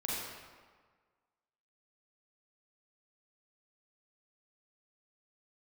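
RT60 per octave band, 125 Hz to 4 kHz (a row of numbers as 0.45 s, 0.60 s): 1.5 s, 1.5 s, 1.5 s, 1.6 s, 1.3 s, 1.0 s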